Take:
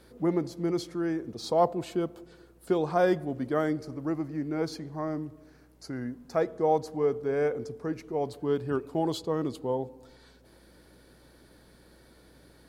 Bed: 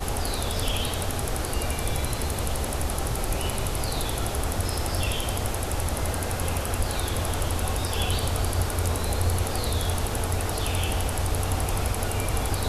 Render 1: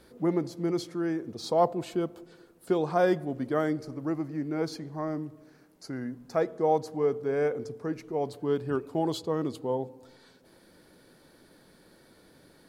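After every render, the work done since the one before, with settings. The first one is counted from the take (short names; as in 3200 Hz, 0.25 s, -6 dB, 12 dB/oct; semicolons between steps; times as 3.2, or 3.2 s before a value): de-hum 60 Hz, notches 2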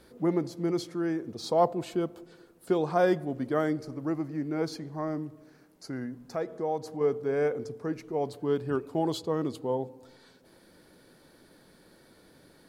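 6.05–7.01 compressor 1.5:1, threshold -36 dBFS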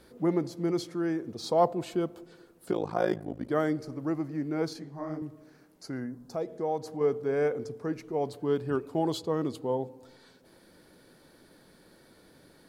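2.71–3.49 AM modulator 54 Hz, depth 100%; 4.73–5.22 detuned doubles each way 59 cents; 6–6.59 bell 4000 Hz -> 1100 Hz -12.5 dB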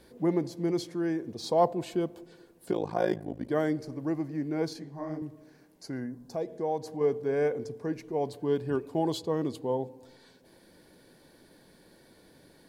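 notch 1300 Hz, Q 5.3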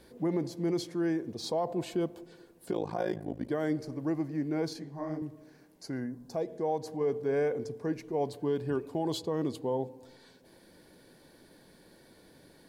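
limiter -21.5 dBFS, peak gain reduction 10.5 dB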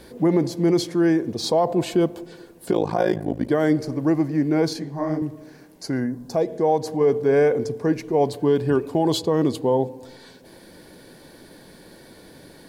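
gain +11.5 dB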